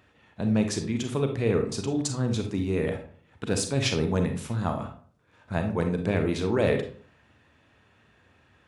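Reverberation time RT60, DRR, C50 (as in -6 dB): 0.50 s, 5.0 dB, 8.0 dB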